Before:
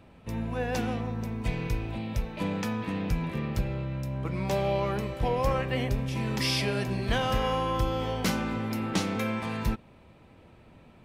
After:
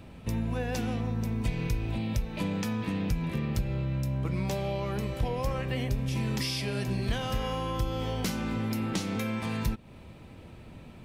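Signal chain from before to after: treble shelf 2.4 kHz +9.5 dB; compression 3:1, threshold -35 dBFS, peak gain reduction 12 dB; bass shelf 400 Hz +8.5 dB

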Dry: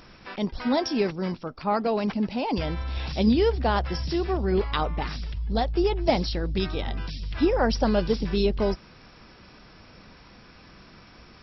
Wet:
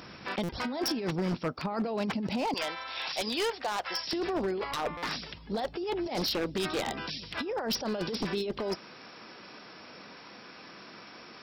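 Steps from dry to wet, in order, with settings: high-pass 100 Hz 12 dB/octave, from 2.54 s 810 Hz, from 4.13 s 270 Hz; compressor with a negative ratio -30 dBFS, ratio -1; wavefolder -24 dBFS; buffer glitch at 0.43/4.97 s, samples 256, times 9

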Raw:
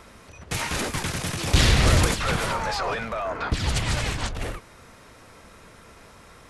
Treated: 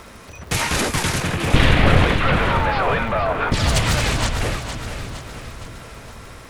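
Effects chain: one-sided wavefolder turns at -20 dBFS; 1.20–3.52 s: low-pass 3.1 kHz 24 dB/octave; crackle 110 per s -43 dBFS; two-band feedback delay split 380 Hz, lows 613 ms, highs 463 ms, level -9 dB; trim +7 dB

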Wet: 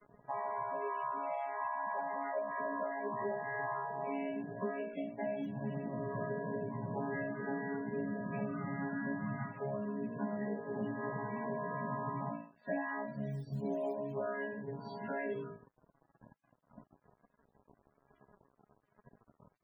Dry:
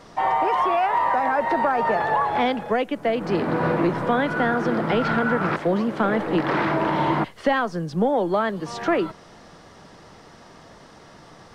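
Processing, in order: vocoder on a held chord bare fifth, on C#3; flutter echo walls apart 3 m, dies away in 0.34 s; plain phase-vocoder stretch 1.7×; modulation noise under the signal 14 dB; crossover distortion -46.5 dBFS; dynamic bell 2.3 kHz, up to +4 dB, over -45 dBFS, Q 0.95; compression 3:1, threshold -41 dBFS, peak gain reduction 17.5 dB; loudest bins only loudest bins 32; trim +1 dB

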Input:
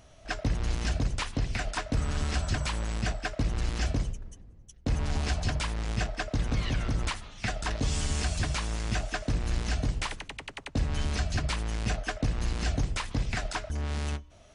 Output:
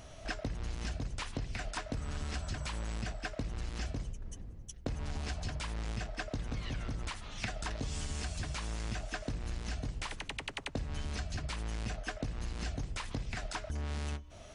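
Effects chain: compression 6:1, threshold -40 dBFS, peak gain reduction 16.5 dB; trim +4.5 dB

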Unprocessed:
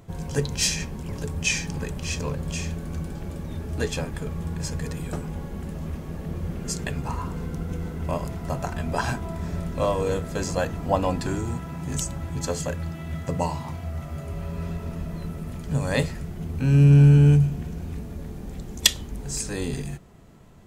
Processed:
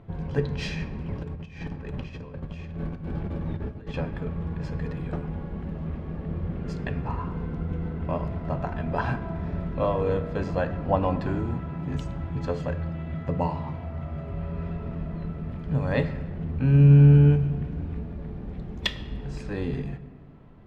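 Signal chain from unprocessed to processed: 1.23–3.94 s: compressor with a negative ratio -33 dBFS, ratio -0.5; distance through air 370 m; reverberation RT60 1.6 s, pre-delay 7 ms, DRR 12 dB

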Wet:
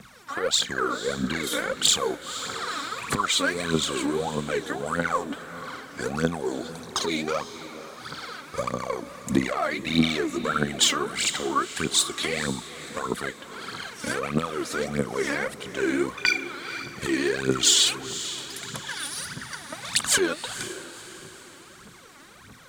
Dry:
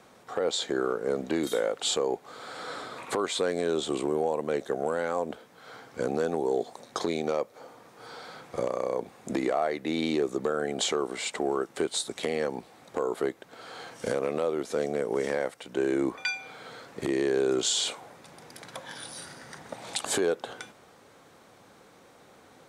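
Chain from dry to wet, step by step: high-order bell 520 Hz -11 dB; phaser 1.6 Hz, delay 3.7 ms, feedback 77%; echo that smears into a reverb 497 ms, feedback 43%, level -13 dB; trim +5 dB

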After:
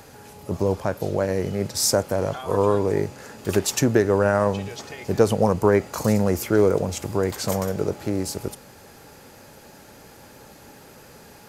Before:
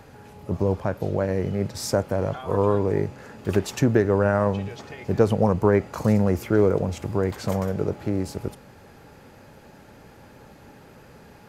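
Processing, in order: tone controls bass -4 dB, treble +10 dB; trim +2 dB

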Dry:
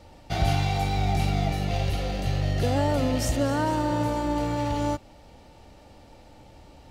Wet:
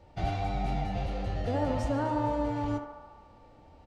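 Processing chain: low-pass 8.9 kHz 12 dB/octave; treble shelf 2.8 kHz -10.5 dB; doubling 37 ms -10.5 dB; time stretch by phase-locked vocoder 0.56×; band-passed feedback delay 73 ms, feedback 78%, band-pass 970 Hz, level -5 dB; trim -4.5 dB

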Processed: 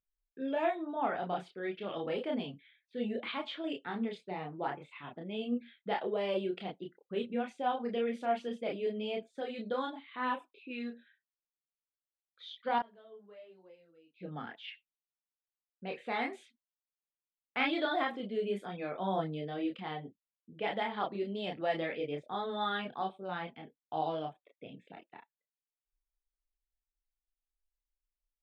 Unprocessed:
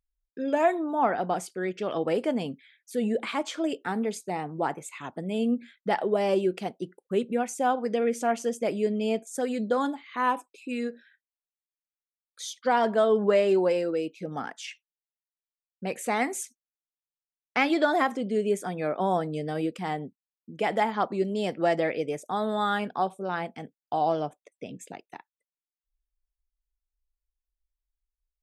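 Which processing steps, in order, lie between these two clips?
level-controlled noise filter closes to 2.2 kHz, open at -20.5 dBFS; resonant high shelf 4.8 kHz -10.5 dB, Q 3; 12.78–14.20 s: inverted gate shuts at -23 dBFS, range -26 dB; chorus voices 4, 0.28 Hz, delay 30 ms, depth 4.9 ms; trim -5.5 dB

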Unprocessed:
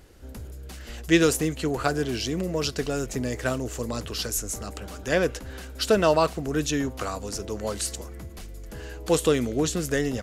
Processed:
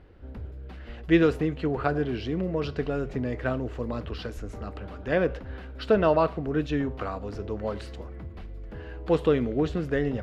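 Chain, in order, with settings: distance through air 400 m; on a send: reverberation RT60 0.40 s, pre-delay 3 ms, DRR 16 dB

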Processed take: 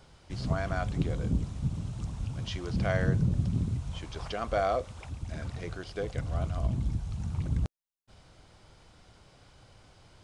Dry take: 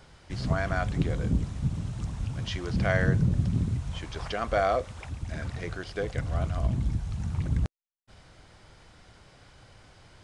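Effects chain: peaking EQ 1.8 kHz -5 dB 0.62 oct; trim -2.5 dB

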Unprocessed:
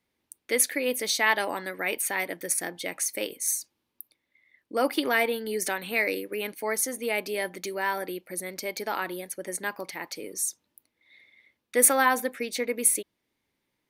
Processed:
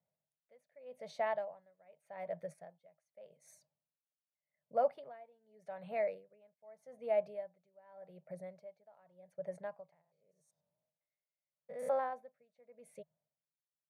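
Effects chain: 9.92–12.13 s: spectrogram pixelated in time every 100 ms; two resonant band-passes 310 Hz, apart 2 oct; logarithmic tremolo 0.84 Hz, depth 27 dB; trim +4.5 dB

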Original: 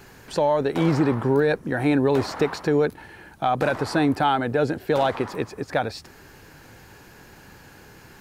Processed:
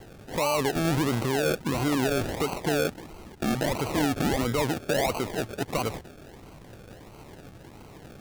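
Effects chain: decimation with a swept rate 35×, swing 60% 1.5 Hz; peak limiter -20 dBFS, peak gain reduction 9.5 dB; trim +1 dB

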